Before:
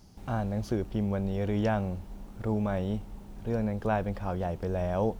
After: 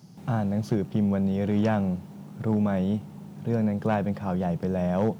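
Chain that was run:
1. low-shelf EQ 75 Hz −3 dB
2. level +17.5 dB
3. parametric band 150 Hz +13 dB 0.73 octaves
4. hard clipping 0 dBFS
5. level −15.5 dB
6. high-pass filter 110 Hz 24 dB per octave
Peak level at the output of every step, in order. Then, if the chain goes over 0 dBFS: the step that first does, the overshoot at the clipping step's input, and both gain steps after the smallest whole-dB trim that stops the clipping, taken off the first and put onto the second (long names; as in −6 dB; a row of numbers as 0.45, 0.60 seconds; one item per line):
−15.5, +2.0, +4.0, 0.0, −15.5, −12.0 dBFS
step 2, 4.0 dB
step 2 +13.5 dB, step 5 −11.5 dB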